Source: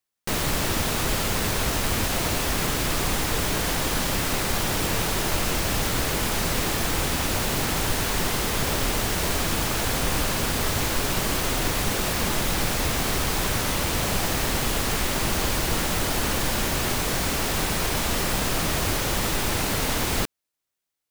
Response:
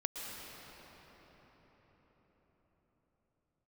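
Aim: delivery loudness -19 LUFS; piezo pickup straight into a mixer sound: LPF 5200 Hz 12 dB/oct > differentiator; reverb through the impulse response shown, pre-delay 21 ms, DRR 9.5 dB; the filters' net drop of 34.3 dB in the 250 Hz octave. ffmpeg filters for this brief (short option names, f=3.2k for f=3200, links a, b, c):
-filter_complex "[0:a]equalizer=f=250:t=o:g=-8,asplit=2[a][b];[1:a]atrim=start_sample=2205,adelay=21[c];[b][c]afir=irnorm=-1:irlink=0,volume=-11.5dB[d];[a][d]amix=inputs=2:normalize=0,lowpass=5.2k,aderivative,volume=15.5dB"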